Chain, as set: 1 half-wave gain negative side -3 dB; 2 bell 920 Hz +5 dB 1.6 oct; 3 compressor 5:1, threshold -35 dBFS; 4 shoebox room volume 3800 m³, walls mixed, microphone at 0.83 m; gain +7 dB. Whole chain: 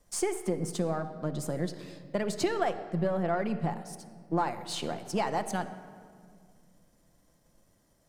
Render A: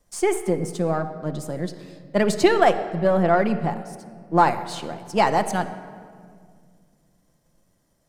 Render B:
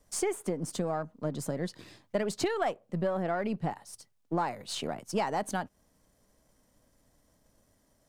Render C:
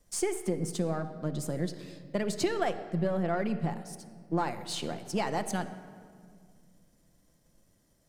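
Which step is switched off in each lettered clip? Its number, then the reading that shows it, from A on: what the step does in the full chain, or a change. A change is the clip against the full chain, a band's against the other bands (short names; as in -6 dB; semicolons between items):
3, mean gain reduction 6.5 dB; 4, echo-to-direct -8.0 dB to none; 2, 1 kHz band -2.5 dB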